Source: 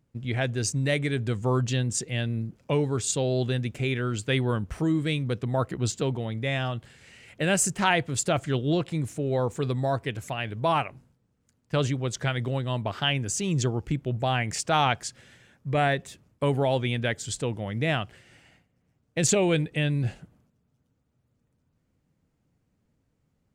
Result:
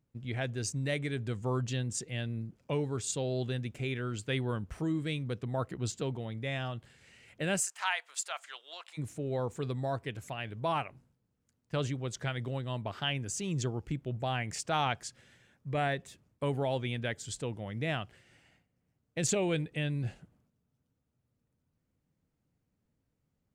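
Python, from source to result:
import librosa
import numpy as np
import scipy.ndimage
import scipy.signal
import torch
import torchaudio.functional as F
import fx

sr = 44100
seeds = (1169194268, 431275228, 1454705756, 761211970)

y = fx.highpass(x, sr, hz=870.0, slope=24, at=(7.6, 8.97), fade=0.02)
y = y * 10.0 ** (-7.5 / 20.0)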